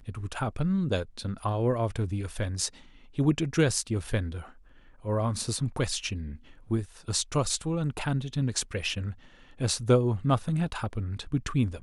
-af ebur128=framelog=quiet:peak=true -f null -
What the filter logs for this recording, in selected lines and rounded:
Integrated loudness:
  I:         -29.3 LUFS
  Threshold: -39.7 LUFS
Loudness range:
  LRA:         2.7 LU
  Threshold: -49.8 LUFS
  LRA low:   -31.3 LUFS
  LRA high:  -28.6 LUFS
True peak:
  Peak:       -8.9 dBFS